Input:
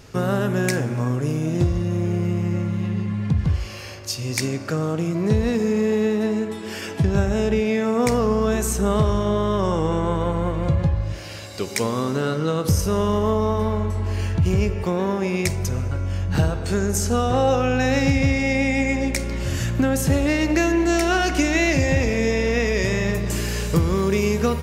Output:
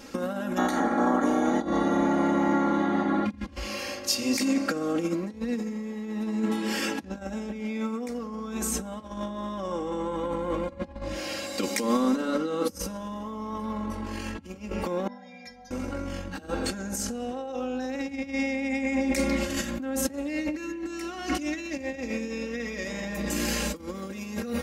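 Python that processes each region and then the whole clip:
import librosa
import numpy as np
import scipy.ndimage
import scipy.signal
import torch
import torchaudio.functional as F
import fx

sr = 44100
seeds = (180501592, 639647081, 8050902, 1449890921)

y = fx.spec_clip(x, sr, under_db=28, at=(0.56, 3.25), fade=0.02)
y = fx.moving_average(y, sr, points=17, at=(0.56, 3.25), fade=0.02)
y = fx.notch_comb(y, sr, f0_hz=530.0, at=(0.56, 3.25), fade=0.02)
y = fx.chain(y, sr, fx.air_absorb(metres=71.0),
    fx.fixed_phaser(hz=1800.0, stages=8),
    fx.stiff_resonator(f0_hz=240.0, decay_s=0.37, stiffness=0.008), at=(15.07, 15.71))
y = fx.over_compress(y, sr, threshold_db=-25.0, ratio=-0.5)
y = fx.low_shelf_res(y, sr, hz=160.0, db=-10.5, q=1.5)
y = y + 0.95 * np.pad(y, (int(3.7 * sr / 1000.0), 0))[:len(y)]
y = y * librosa.db_to_amplitude(-5.0)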